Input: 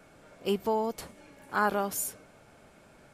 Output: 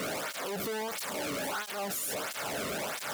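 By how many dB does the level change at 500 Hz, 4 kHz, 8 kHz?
-3.0, +7.5, +2.5 dB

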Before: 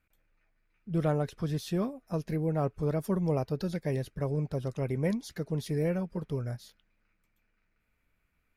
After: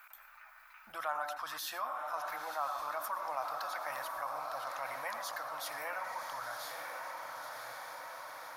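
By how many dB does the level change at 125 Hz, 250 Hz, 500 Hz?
under -35 dB, -31.0 dB, -11.5 dB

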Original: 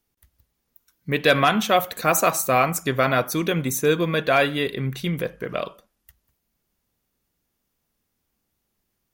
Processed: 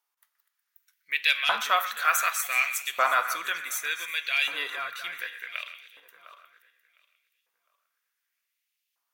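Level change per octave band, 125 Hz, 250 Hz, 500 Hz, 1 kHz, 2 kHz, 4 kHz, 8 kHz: under -40 dB, under -30 dB, -18.0 dB, -5.0 dB, -1.0 dB, -1.0 dB, -4.5 dB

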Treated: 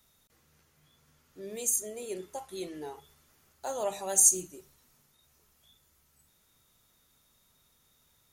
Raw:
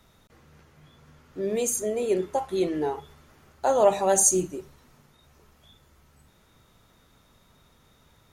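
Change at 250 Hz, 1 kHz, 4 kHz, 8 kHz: -14.0, -13.0, -5.5, -0.5 dB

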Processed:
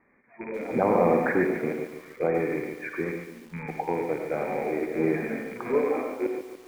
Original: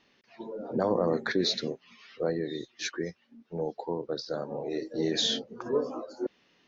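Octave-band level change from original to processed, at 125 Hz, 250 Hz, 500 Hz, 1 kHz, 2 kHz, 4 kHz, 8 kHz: +4.0 dB, +4.5 dB, +5.0 dB, +8.5 dB, +6.5 dB, under -20 dB, n/a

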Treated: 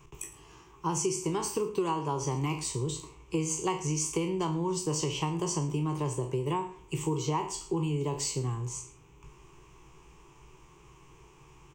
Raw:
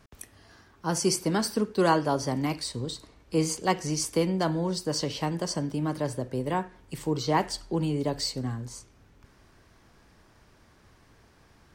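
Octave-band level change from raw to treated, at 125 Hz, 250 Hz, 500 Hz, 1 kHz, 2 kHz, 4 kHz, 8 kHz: -0.5, -4.0, -3.5, -3.5, -7.5, -6.0, +1.0 dB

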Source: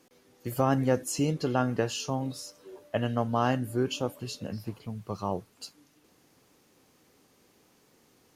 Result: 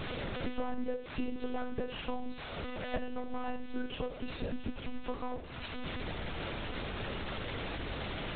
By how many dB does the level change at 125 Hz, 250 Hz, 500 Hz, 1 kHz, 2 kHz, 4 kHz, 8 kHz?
-10.5 dB, -7.5 dB, -8.0 dB, -8.0 dB, -0.5 dB, -2.5 dB, under -40 dB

